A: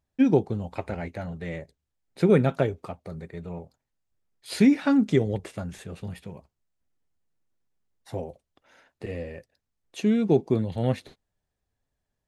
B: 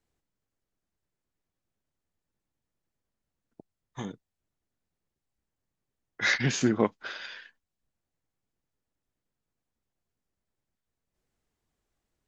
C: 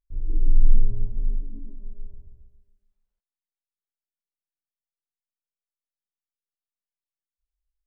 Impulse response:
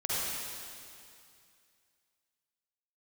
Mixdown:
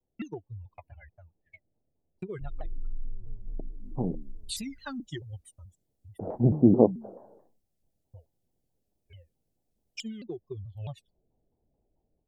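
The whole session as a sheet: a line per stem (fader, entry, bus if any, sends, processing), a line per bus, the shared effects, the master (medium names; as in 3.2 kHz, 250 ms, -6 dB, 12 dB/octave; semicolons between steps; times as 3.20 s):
-1.5 dB, 0.00 s, bus A, no send, expander on every frequency bin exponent 3; gate -52 dBFS, range -42 dB; compression, threshold -31 dBFS, peak gain reduction 14.5 dB
-1.0 dB, 0.00 s, no bus, no send, de-hum 69.45 Hz, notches 5; level rider gain up to 9 dB; steep low-pass 780 Hz 48 dB/octave
-4.0 dB, 2.30 s, bus A, no send, none
bus A: 0.0 dB, treble shelf 2.6 kHz +11.5 dB; compression 3:1, threshold -34 dBFS, peak gain reduction 16.5 dB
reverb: none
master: vibrato with a chosen wave saw down 4.6 Hz, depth 250 cents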